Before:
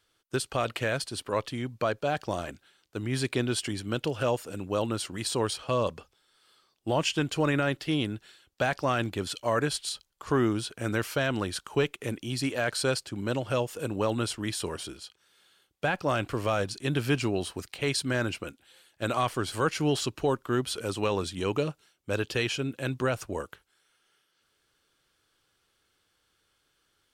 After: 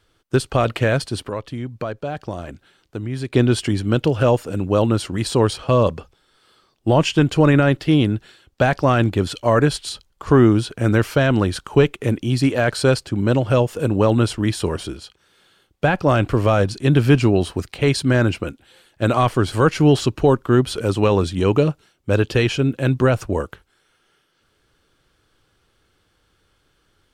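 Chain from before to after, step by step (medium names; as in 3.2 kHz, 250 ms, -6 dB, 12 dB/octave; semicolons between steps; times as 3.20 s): tilt EQ -2 dB/octave; 1.27–3.34 s: compression 2:1, threshold -40 dBFS, peak gain reduction 11 dB; trim +9 dB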